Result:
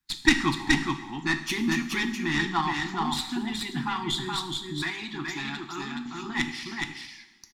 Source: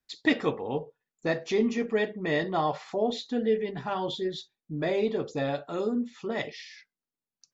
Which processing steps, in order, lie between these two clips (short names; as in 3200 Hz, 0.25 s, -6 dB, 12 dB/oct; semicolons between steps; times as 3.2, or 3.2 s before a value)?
tracing distortion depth 0.089 ms; elliptic band-stop 340–850 Hz, stop band 50 dB; on a send: echo 0.422 s -3.5 dB; on the sum: harmonic-percussive split harmonic -10 dB; two-slope reverb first 0.91 s, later 2.4 s, from -17 dB, DRR 8 dB; in parallel at -8.5 dB: soft clip -24 dBFS, distortion -13 dB; 4.82–6.06 on the sum: low shelf 420 Hz -8.5 dB; gain +6 dB